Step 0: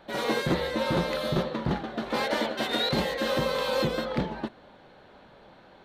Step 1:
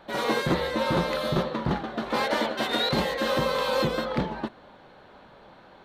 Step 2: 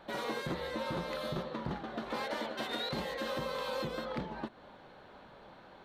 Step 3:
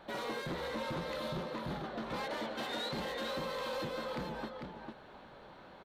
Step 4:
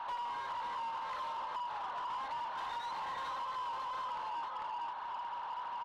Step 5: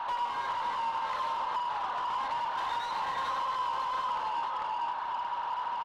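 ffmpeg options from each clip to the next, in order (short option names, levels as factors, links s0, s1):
-af "equalizer=f=1100:t=o:w=0.77:g=3.5,volume=1.12"
-af "acompressor=threshold=0.02:ratio=2.5,volume=0.668"
-filter_complex "[0:a]asplit=2[s0][s1];[s1]aecho=0:1:448:0.447[s2];[s0][s2]amix=inputs=2:normalize=0,asoftclip=type=tanh:threshold=0.0266"
-filter_complex "[0:a]highpass=f=960:t=q:w=12,acompressor=threshold=0.0126:ratio=5,asplit=2[s0][s1];[s1]highpass=f=720:p=1,volume=7.94,asoftclip=type=tanh:threshold=0.0316[s2];[s0][s2]amix=inputs=2:normalize=0,lowpass=f=2300:p=1,volume=0.501,volume=0.708"
-af "aecho=1:1:101:0.376,volume=2.11"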